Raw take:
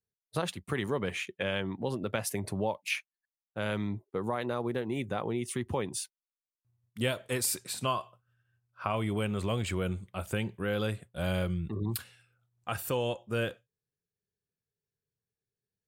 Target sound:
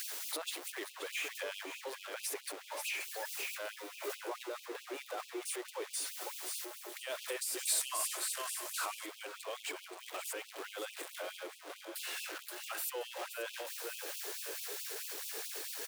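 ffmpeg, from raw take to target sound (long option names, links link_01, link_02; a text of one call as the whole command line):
ffmpeg -i in.wav -filter_complex "[0:a]aeval=exprs='val(0)+0.5*0.0335*sgn(val(0))':channel_layout=same,aecho=1:1:527|1054|1581|2108:0.355|0.124|0.0435|0.0152,alimiter=limit=-21dB:level=0:latency=1:release=22,acompressor=threshold=-38dB:ratio=4,asettb=1/sr,asplit=3[link_01][link_02][link_03];[link_01]atrim=end=3.754[link_04];[link_02]atrim=start=3.75:end=4.32,asetpts=PTS-STARTPTS,afade=type=in:duration=0.004:curve=qsin,afade=type=out:start_time=0.566:duration=0.004:curve=qsin,asplit=2[link_05][link_06];[link_06]adelay=17,volume=-4dB[link_07];[link_05][link_07]amix=inputs=2:normalize=0,atrim=end_sample=25137[link_08];[link_03]atrim=start=4.316[link_09];[link_04][link_08]acrossfade=duration=0.004:curve1=hsin:curve2=qsin[link_10];[link_10][link_09]acrossfade=duration=0.004:curve1=qsin:curve2=hsin,asettb=1/sr,asplit=3[link_11][link_12][link_13];[link_11]atrim=end=7.654[link_14];[link_12]atrim=start=7.65:end=9.06,asetpts=PTS-STARTPTS,afade=type=in:duration=0.004:curve=qsin,afade=type=out:start_time=1.406:duration=0.004:curve=qsin,equalizer=frequency=10000:width=0.6:gain=9.5[link_15];[link_13]atrim=start=9.056[link_16];[link_14][link_15]acrossfade=duration=0.004:curve1=hsin:curve2=qsin[link_17];[link_17][link_16]acrossfade=duration=0.004:curve1=qsin:curve2=hsin,afftfilt=real='re*gte(b*sr/1024,260*pow(2500/260,0.5+0.5*sin(2*PI*4.6*pts/sr)))':imag='im*gte(b*sr/1024,260*pow(2500/260,0.5+0.5*sin(2*PI*4.6*pts/sr)))':win_size=1024:overlap=0.75,volume=1dB" out.wav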